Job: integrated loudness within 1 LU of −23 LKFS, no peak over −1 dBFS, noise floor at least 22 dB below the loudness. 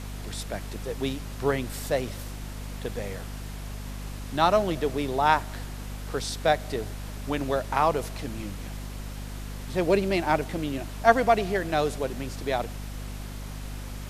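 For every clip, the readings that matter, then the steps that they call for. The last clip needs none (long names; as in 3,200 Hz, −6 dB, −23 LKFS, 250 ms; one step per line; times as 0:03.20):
mains hum 50 Hz; hum harmonics up to 250 Hz; level of the hum −34 dBFS; background noise floor −37 dBFS; target noise floor −50 dBFS; integrated loudness −28.0 LKFS; sample peak −3.5 dBFS; target loudness −23.0 LKFS
→ hum removal 50 Hz, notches 5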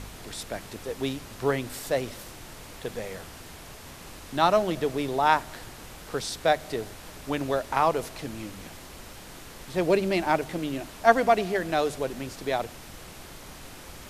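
mains hum none found; background noise floor −45 dBFS; target noise floor −50 dBFS
→ noise reduction from a noise print 6 dB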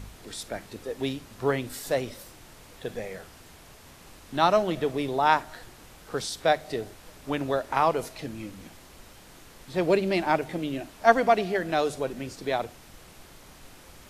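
background noise floor −51 dBFS; integrated loudness −27.0 LKFS; sample peak −3.5 dBFS; target loudness −23.0 LKFS
→ level +4 dB
brickwall limiter −1 dBFS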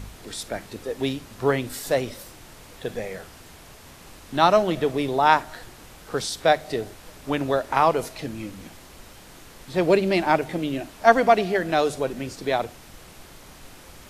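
integrated loudness −23.5 LKFS; sample peak −1.0 dBFS; background noise floor −47 dBFS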